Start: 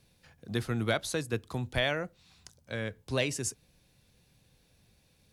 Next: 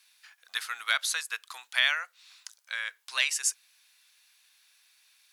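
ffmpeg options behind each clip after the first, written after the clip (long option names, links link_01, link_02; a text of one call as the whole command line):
ffmpeg -i in.wav -af "highpass=frequency=1200:width=0.5412,highpass=frequency=1200:width=1.3066,volume=7.5dB" out.wav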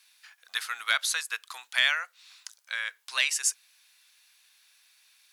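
ffmpeg -i in.wav -af "acontrast=82,volume=-5.5dB" out.wav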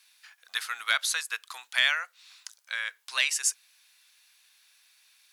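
ffmpeg -i in.wav -af anull out.wav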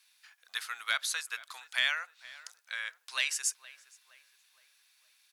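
ffmpeg -i in.wav -filter_complex "[0:a]asplit=2[link_01][link_02];[link_02]adelay=467,lowpass=frequency=2200:poles=1,volume=-17.5dB,asplit=2[link_03][link_04];[link_04]adelay=467,lowpass=frequency=2200:poles=1,volume=0.51,asplit=2[link_05][link_06];[link_06]adelay=467,lowpass=frequency=2200:poles=1,volume=0.51,asplit=2[link_07][link_08];[link_08]adelay=467,lowpass=frequency=2200:poles=1,volume=0.51[link_09];[link_01][link_03][link_05][link_07][link_09]amix=inputs=5:normalize=0,volume=-5dB" out.wav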